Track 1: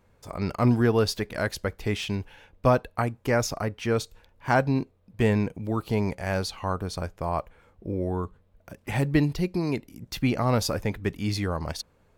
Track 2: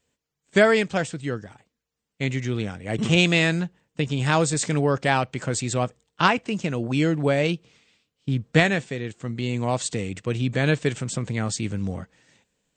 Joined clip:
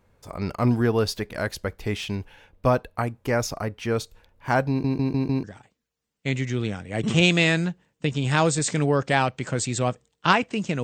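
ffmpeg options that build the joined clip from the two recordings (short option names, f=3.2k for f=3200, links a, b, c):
-filter_complex "[0:a]apad=whole_dur=10.83,atrim=end=10.83,asplit=5[a][b][c][d][e];[a]atrim=end=4.842[f];[b]atrim=start=4.688:end=4.842[g];[c]atrim=start=4.688:end=4.842[h];[d]atrim=start=4.688:end=4.842[i];[e]atrim=start=4.688:end=4.842[j];[1:a]atrim=start=1.388:end=6.78[k];[f][g]acrossfade=d=0.004:c1=hsin:c2=hsin[l];[l][h]acrossfade=d=0.004:c1=hsin:c2=hsin[m];[m][i]acrossfade=d=0.004:c1=hsin:c2=hsin[n];[n][j]acrossfade=d=0.004:c1=hsin:c2=hsin[o];[o][k]acrossfade=d=0.004:c1=hsin:c2=hsin"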